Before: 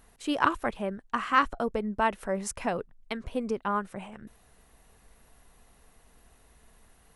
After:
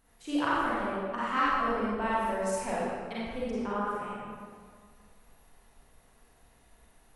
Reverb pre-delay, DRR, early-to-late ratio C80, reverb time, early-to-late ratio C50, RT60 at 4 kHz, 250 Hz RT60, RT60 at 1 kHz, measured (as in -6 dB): 35 ms, -8.5 dB, -2.0 dB, 1.9 s, -5.0 dB, 1.3 s, 1.9 s, 1.9 s